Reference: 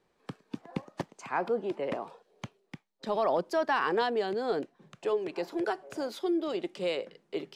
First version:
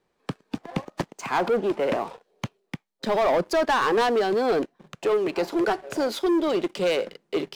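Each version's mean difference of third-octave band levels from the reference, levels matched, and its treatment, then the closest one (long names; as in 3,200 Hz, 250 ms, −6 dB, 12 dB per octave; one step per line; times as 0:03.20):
3.5 dB: leveller curve on the samples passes 2
in parallel at −6 dB: gain into a clipping stage and back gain 27.5 dB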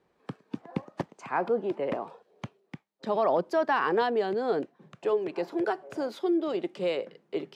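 2.0 dB: high-pass filter 49 Hz
high-shelf EQ 3,200 Hz −9 dB
level +3 dB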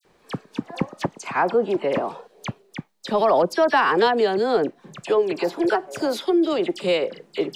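6.0 dB: in parallel at −2 dB: downward compressor, threshold −39 dBFS, peak gain reduction 15 dB
on the sum: all-pass dispersion lows, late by 49 ms, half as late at 2,700 Hz
level +8.5 dB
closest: second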